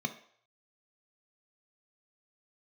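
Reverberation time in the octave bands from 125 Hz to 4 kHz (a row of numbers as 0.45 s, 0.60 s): 0.35 s, 0.40 s, 0.60 s, 0.60 s, 0.60 s, 0.55 s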